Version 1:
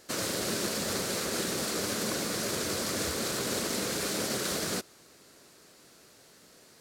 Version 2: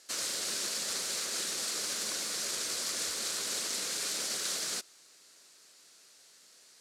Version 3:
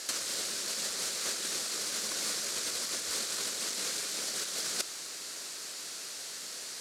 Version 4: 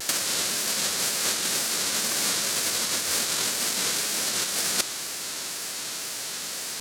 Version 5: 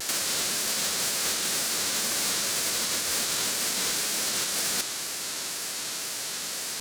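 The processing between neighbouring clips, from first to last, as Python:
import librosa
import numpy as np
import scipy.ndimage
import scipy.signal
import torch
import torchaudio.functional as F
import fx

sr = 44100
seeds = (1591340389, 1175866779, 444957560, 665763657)

y1 = scipy.signal.sosfilt(scipy.signal.butter(2, 8000.0, 'lowpass', fs=sr, output='sos'), x)
y1 = fx.tilt_eq(y1, sr, slope=4.0)
y1 = y1 * librosa.db_to_amplitude(-8.0)
y2 = fx.over_compress(y1, sr, threshold_db=-41.0, ratio=-0.5)
y2 = y2 * librosa.db_to_amplitude(9.0)
y3 = fx.envelope_flatten(y2, sr, power=0.6)
y3 = fx.vibrato(y3, sr, rate_hz=2.0, depth_cents=91.0)
y3 = y3 * librosa.db_to_amplitude(8.5)
y4 = np.clip(y3, -10.0 ** (-23.5 / 20.0), 10.0 ** (-23.5 / 20.0))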